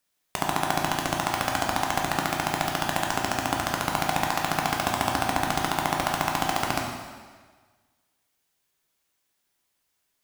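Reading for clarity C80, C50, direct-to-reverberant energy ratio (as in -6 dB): 4.5 dB, 2.5 dB, -0.5 dB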